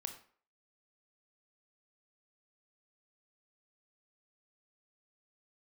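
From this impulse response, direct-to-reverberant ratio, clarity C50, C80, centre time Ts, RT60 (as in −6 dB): 6.0 dB, 9.5 dB, 13.0 dB, 13 ms, 0.50 s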